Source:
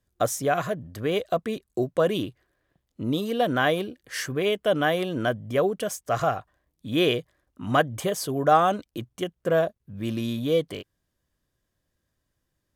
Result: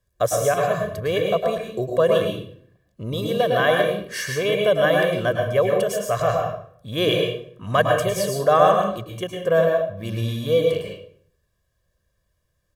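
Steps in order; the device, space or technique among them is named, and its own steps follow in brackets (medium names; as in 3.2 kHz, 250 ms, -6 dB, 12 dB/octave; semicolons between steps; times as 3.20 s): microphone above a desk (comb 1.8 ms, depth 71%; reverberation RT60 0.60 s, pre-delay 100 ms, DRR 1 dB)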